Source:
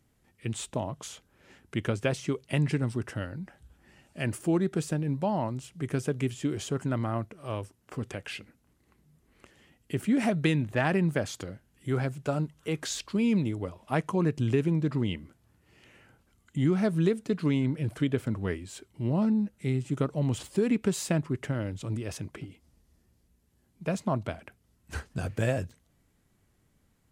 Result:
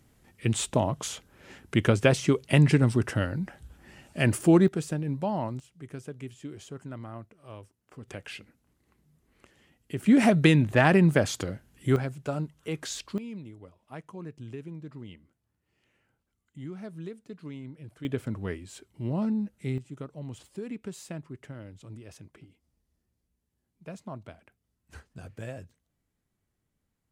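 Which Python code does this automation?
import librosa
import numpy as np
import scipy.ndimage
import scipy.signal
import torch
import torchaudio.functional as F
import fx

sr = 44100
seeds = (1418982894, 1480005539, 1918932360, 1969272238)

y = fx.gain(x, sr, db=fx.steps((0.0, 7.0), (4.68, -1.0), (5.6, -10.5), (8.08, -2.5), (10.06, 6.0), (11.96, -2.0), (13.18, -14.5), (18.05, -2.5), (19.78, -11.5)))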